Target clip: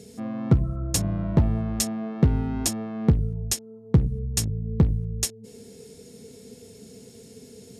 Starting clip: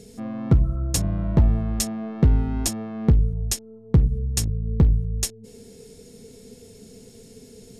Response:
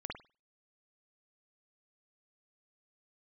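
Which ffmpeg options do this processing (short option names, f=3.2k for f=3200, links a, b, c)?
-af "highpass=79"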